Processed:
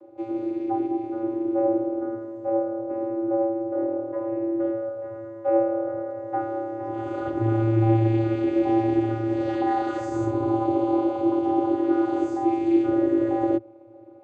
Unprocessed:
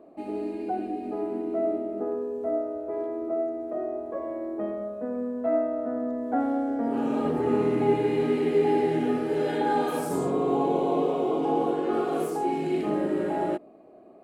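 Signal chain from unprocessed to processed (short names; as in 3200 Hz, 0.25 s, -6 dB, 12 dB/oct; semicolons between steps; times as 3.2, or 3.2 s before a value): high shelf 5600 Hz +8 dB; vocoder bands 16, square 112 Hz; gain +3.5 dB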